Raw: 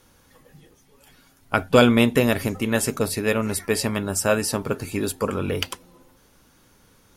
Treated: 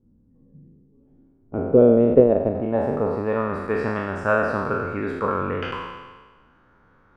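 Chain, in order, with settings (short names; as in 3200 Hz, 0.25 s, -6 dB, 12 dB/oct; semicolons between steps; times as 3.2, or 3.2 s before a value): spectral trails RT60 1.37 s; 2.14–2.55 transient shaper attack +11 dB, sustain -11 dB; low-pass sweep 230 Hz -> 1400 Hz, 0.69–3.89; gain -4.5 dB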